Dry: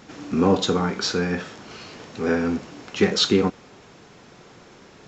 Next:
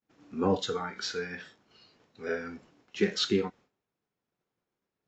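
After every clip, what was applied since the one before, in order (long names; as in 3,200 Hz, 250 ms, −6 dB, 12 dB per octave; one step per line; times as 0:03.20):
downward expander −35 dBFS
noise reduction from a noise print of the clip's start 12 dB
high-shelf EQ 4,500 Hz −5 dB
level −7 dB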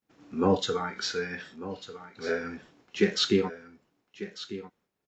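single-tap delay 1,196 ms −14 dB
level +3 dB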